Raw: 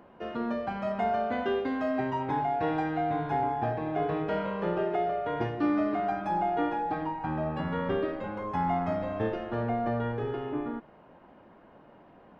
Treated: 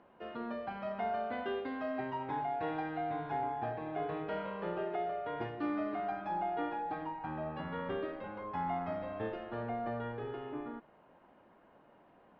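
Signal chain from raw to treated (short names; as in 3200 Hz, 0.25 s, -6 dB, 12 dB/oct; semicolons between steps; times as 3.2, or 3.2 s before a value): LPF 4500 Hz 24 dB/oct; low shelf 340 Hz -5.5 dB; gain -6 dB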